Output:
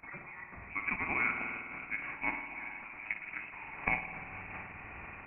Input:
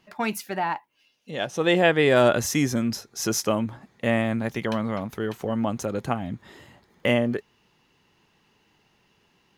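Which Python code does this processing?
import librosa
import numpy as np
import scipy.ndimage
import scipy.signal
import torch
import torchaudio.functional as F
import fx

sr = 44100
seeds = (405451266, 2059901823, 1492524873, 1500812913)

y = fx.bin_compress(x, sr, power=0.4)
y = fx.recorder_agc(y, sr, target_db=-11.5, rise_db_per_s=37.0, max_gain_db=30)
y = fx.highpass(y, sr, hz=1400.0, slope=6)
y = fx.noise_reduce_blind(y, sr, reduce_db=9)
y = fx.dynamic_eq(y, sr, hz=1900.0, q=0.8, threshold_db=-36.0, ratio=4.0, max_db=-6)
y = fx.level_steps(y, sr, step_db=14)
y = fx.stretch_grains(y, sr, factor=0.55, grain_ms=97.0)
y = fx.freq_invert(y, sr, carrier_hz=2800)
y = fx.rev_spring(y, sr, rt60_s=2.9, pass_ms=(50,), chirp_ms=30, drr_db=3.5)
y = fx.am_noise(y, sr, seeds[0], hz=5.7, depth_pct=60)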